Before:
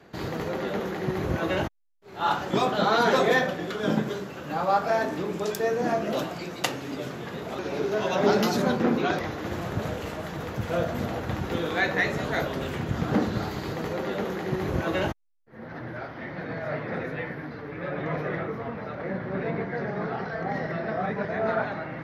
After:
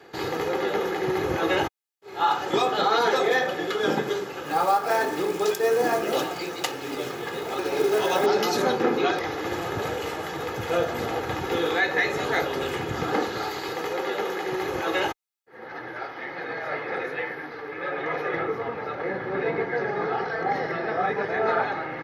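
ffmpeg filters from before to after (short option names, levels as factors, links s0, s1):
-filter_complex "[0:a]asettb=1/sr,asplit=3[s0][s1][s2];[s0]atrim=end=4.454[s3];[s1]atrim=start=4.45:end=8.26,asetpts=PTS-STARTPTS,afade=t=in:d=0.004:c=qsin,afade=t=out:st=3.806:d=0.004:c=qsin,acrusher=bits=5:mode=log:mix=0:aa=0.000001[s4];[s2]atrim=start=8.256[s5];[s3][s4]acrossfade=d=0.004:c1=hsin:c2=qsin[s6];[s6][s5]acrossfade=d=0.004:c1=qsin:c2=hsin,asettb=1/sr,asplit=3[s7][s8][s9];[s7]atrim=end=13.104[s10];[s8]atrim=start=13.1:end=18.34,asetpts=PTS-STARTPTS,afade=t=in:d=0.004:c=qsin,afade=t=out:st=5.236:d=0.004:c=qsin,equalizer=f=91:w=0.31:g=-8[s11];[s9]atrim=start=18.336[s12];[s10][s11]acrossfade=d=0.004:c1=hsin:c2=qsin[s13];[s13][s12]acrossfade=d=0.004:c1=qsin:c2=hsin,highpass=f=320:p=1,aecho=1:1:2.4:0.54,alimiter=limit=0.15:level=0:latency=1:release=228,volume=1.68"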